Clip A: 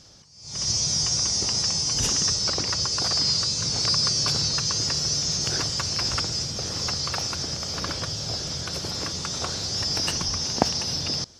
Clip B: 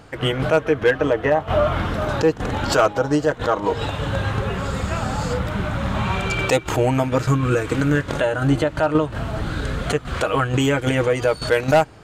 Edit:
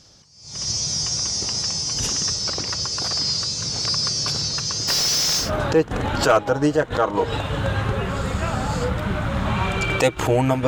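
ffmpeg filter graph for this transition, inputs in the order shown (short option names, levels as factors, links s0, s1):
-filter_complex "[0:a]asplit=3[s0][s1][s2];[s0]afade=t=out:st=4.87:d=0.02[s3];[s1]asplit=2[s4][s5];[s5]highpass=f=720:p=1,volume=56.2,asoftclip=type=tanh:threshold=0.251[s6];[s4][s6]amix=inputs=2:normalize=0,lowpass=f=5100:p=1,volume=0.501,afade=t=in:st=4.87:d=0.02,afade=t=out:st=5.51:d=0.02[s7];[s2]afade=t=in:st=5.51:d=0.02[s8];[s3][s7][s8]amix=inputs=3:normalize=0,apad=whole_dur=10.67,atrim=end=10.67,atrim=end=5.51,asetpts=PTS-STARTPTS[s9];[1:a]atrim=start=1.86:end=7.16,asetpts=PTS-STARTPTS[s10];[s9][s10]acrossfade=d=0.14:c1=tri:c2=tri"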